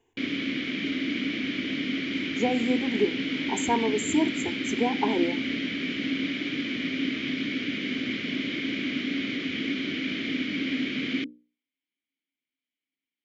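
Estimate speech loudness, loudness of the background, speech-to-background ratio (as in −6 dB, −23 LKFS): −28.5 LKFS, −29.0 LKFS, 0.5 dB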